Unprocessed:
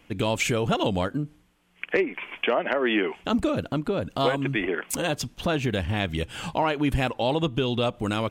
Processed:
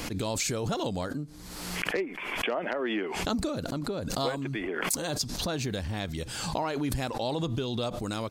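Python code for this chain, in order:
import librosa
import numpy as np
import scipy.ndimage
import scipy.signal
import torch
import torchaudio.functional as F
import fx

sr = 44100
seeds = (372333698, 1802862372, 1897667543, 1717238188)

y = fx.high_shelf_res(x, sr, hz=3600.0, db=6.0, q=3.0)
y = fx.pre_swell(y, sr, db_per_s=34.0)
y = F.gain(torch.from_numpy(y), -7.0).numpy()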